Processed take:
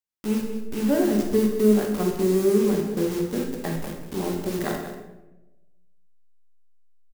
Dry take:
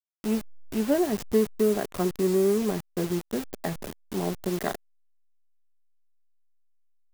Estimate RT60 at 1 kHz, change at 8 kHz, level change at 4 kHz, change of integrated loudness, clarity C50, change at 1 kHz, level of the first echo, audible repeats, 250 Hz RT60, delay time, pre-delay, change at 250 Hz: 0.90 s, +2.0 dB, +2.0 dB, +3.5 dB, 4.0 dB, +1.0 dB, -11.5 dB, 1, 1.3 s, 191 ms, 18 ms, +5.0 dB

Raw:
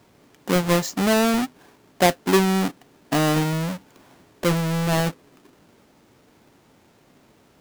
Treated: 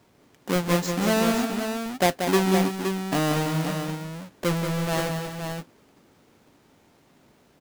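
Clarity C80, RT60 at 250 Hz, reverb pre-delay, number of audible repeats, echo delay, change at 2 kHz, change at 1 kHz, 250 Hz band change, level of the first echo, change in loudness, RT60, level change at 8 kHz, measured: no reverb, no reverb, no reverb, 3, 184 ms, -2.5 dB, -2.5 dB, -2.5 dB, -7.0 dB, -3.5 dB, no reverb, -2.5 dB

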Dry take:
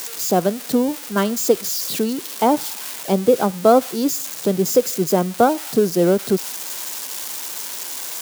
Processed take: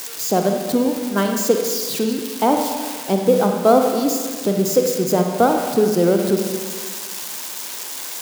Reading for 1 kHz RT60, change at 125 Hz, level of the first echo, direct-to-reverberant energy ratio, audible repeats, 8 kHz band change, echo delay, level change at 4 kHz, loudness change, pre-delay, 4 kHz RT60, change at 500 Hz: 1.7 s, +1.0 dB, no echo, 3.0 dB, no echo, -0.5 dB, no echo, +0.5 dB, +0.5 dB, 37 ms, 1.5 s, +0.5 dB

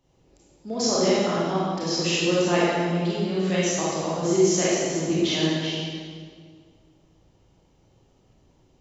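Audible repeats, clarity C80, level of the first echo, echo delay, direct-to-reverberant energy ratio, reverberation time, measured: no echo, -1.0 dB, no echo, no echo, -9.0 dB, 1.8 s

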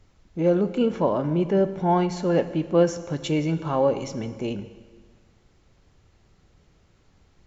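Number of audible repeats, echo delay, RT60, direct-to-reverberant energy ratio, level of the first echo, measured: no echo, no echo, 1.6 s, 11.0 dB, no echo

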